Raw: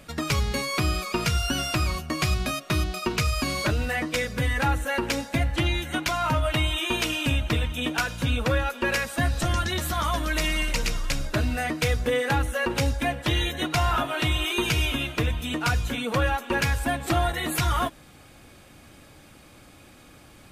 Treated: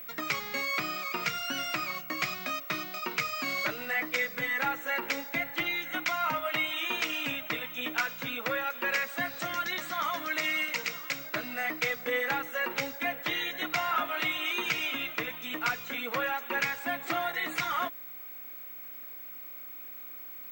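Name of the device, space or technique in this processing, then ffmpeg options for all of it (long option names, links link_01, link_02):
old television with a line whistle: -af "highpass=frequency=190:width=0.5412,highpass=frequency=190:width=1.3066,equalizer=frequency=220:width_type=q:width=4:gain=-8,equalizer=frequency=370:width_type=q:width=4:gain=-6,equalizer=frequency=1300:width_type=q:width=4:gain=5,equalizer=frequency=2100:width_type=q:width=4:gain=10,lowpass=frequency=7400:width=0.5412,lowpass=frequency=7400:width=1.3066,aeval=exprs='val(0)+0.02*sin(2*PI*15734*n/s)':channel_layout=same,volume=-7dB"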